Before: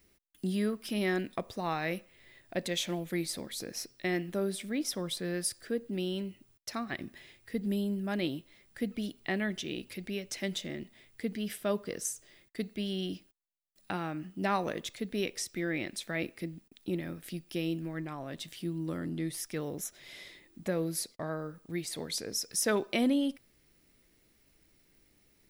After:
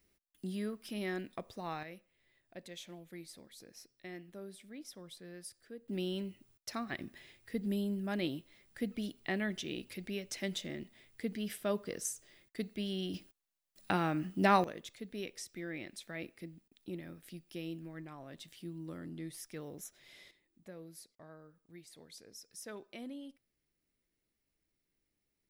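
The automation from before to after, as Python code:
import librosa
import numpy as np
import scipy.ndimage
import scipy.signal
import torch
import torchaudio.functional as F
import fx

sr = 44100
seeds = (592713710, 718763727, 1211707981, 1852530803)

y = fx.gain(x, sr, db=fx.steps((0.0, -7.5), (1.83, -15.5), (5.88, -3.0), (13.14, 3.5), (14.64, -9.0), (20.31, -18.0)))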